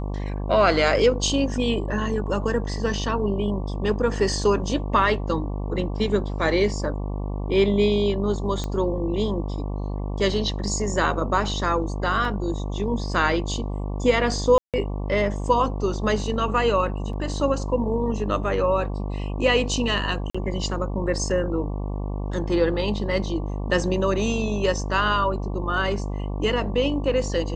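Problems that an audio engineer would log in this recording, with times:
mains buzz 50 Hz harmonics 23 −28 dBFS
0:08.64: click −15 dBFS
0:12.25: drop-out 2 ms
0:14.58–0:14.74: drop-out 157 ms
0:17.13: drop-out 3.2 ms
0:20.30–0:20.34: drop-out 45 ms

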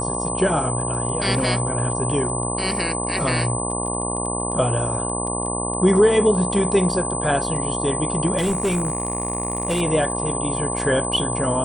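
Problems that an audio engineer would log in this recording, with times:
mains buzz 60 Hz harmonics 19 −27 dBFS
surface crackle 13 per second −29 dBFS
whistle 8,100 Hz −26 dBFS
0:08.37–0:09.82: clipping −16.5 dBFS

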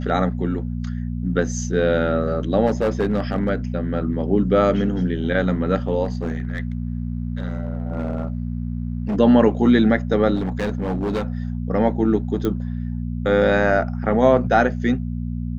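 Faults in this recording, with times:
mains hum 60 Hz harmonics 4 −26 dBFS
0:02.66–0:03.50: clipping −14.5 dBFS
0:06.04–0:09.16: clipping −19.5 dBFS
0:10.35–0:11.38: clipping −19 dBFS
0:12.45: click −12 dBFS

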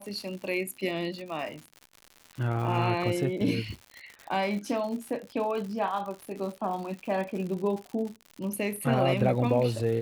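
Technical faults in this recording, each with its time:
surface crackle 130 per second −36 dBFS

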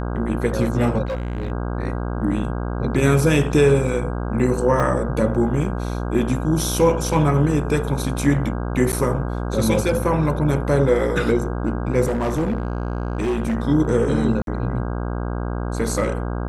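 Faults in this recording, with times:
mains buzz 60 Hz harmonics 27 −25 dBFS
0:01.05–0:01.52: clipping −21.5 dBFS
0:04.80: drop-out 2.1 ms
0:08.92–0:08.93: drop-out 8.7 ms
0:12.05–0:13.55: clipping −17.5 dBFS
0:14.42–0:14.47: drop-out 52 ms

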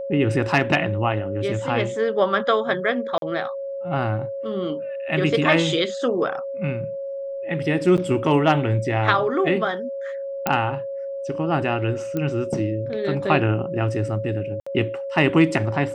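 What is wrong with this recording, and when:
whistle 550 Hz −27 dBFS
0:03.18–0:03.22: drop-out 42 ms
0:07.97–0:07.98: drop-out 8 ms
0:10.47: click −5 dBFS
0:12.17: click −14 dBFS
0:14.60–0:14.66: drop-out 65 ms

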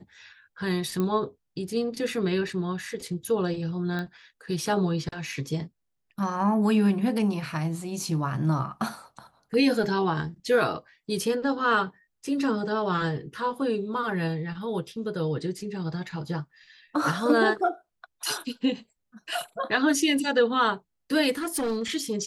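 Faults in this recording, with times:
0:01.00: click −16 dBFS
0:03.99: click −21 dBFS
0:21.37–0:21.83: clipping −24 dBFS

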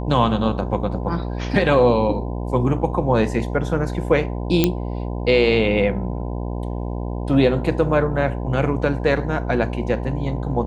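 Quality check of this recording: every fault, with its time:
mains buzz 60 Hz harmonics 17 −26 dBFS
0:04.64: click −2 dBFS

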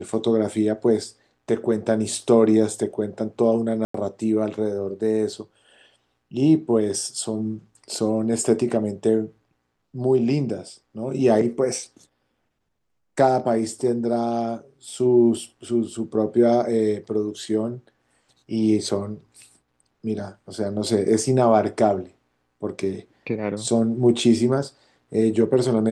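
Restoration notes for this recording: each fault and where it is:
0:03.85–0:03.94: drop-out 94 ms

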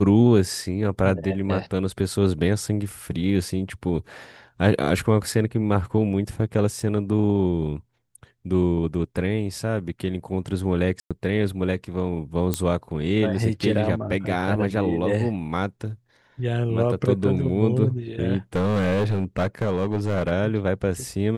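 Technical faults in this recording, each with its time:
0:06.80: drop-out 2.4 ms
0:11.00–0:11.11: drop-out 106 ms
0:12.54: click −7 dBFS
0:18.56–0:20.32: clipping −18 dBFS

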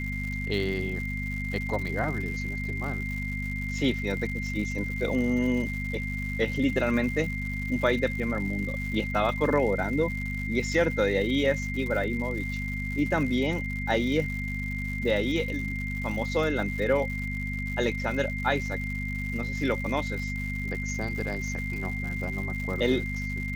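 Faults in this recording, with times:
surface crackle 190 per second −35 dBFS
mains hum 50 Hz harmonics 5 −33 dBFS
whistle 2,100 Hz −34 dBFS

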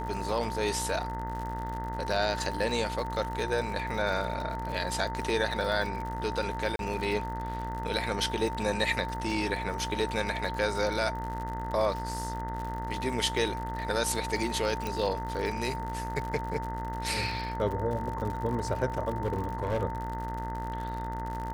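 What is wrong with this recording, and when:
mains buzz 60 Hz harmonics 34 −37 dBFS
surface crackle 79 per second −35 dBFS
whistle 900 Hz −36 dBFS
0:06.76–0:06.79: drop-out 32 ms
0:14.87: click
0:19.25–0:19.83: clipping −24 dBFS

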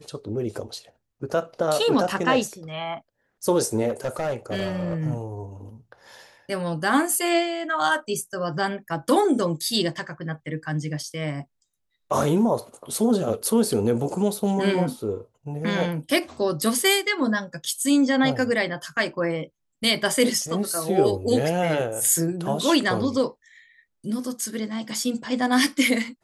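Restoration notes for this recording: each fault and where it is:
0:03.88–0:04.94: clipping −21.5 dBFS

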